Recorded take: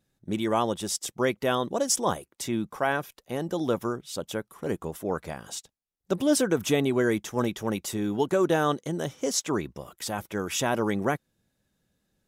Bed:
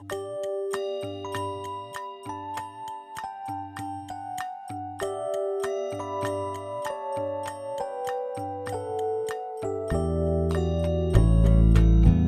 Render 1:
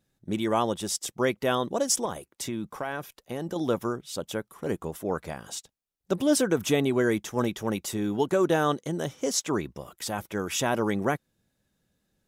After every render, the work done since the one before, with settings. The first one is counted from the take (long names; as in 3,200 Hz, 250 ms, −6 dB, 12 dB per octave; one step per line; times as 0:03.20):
0:02.05–0:03.56: downward compressor, threshold −27 dBFS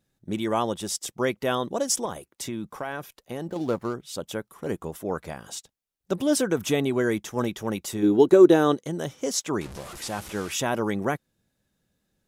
0:03.44–0:03.94: running median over 15 samples
0:08.02–0:08.74: hollow resonant body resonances 350/3,900 Hz, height 14 dB → 10 dB, ringing for 20 ms
0:09.61–0:10.52: linear delta modulator 64 kbit/s, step −34 dBFS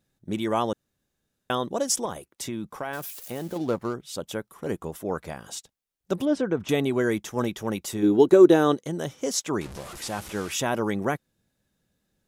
0:00.73–0:01.50: fill with room tone
0:02.93–0:03.58: spike at every zero crossing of −34.5 dBFS
0:06.25–0:06.69: head-to-tape spacing loss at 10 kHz 26 dB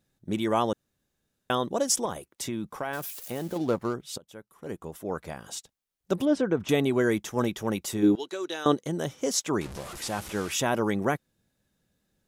0:04.18–0:06.14: fade in equal-power, from −22.5 dB
0:08.15–0:08.66: resonant band-pass 4,100 Hz, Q 0.98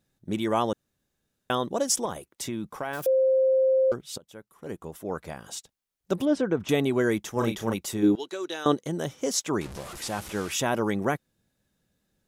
0:03.06–0:03.92: beep over 526 Hz −18 dBFS
0:07.33–0:07.74: double-tracking delay 35 ms −5 dB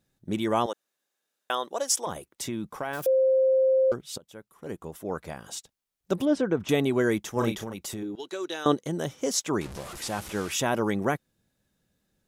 0:00.66–0:02.07: high-pass filter 560 Hz
0:07.63–0:08.31: downward compressor 10 to 1, threshold −31 dBFS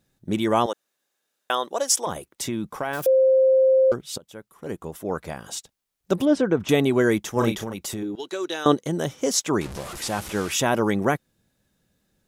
level +4.5 dB